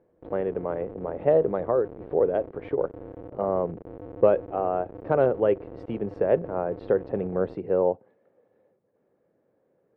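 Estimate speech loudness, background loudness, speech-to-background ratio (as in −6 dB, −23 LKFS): −26.5 LKFS, −42.5 LKFS, 16.0 dB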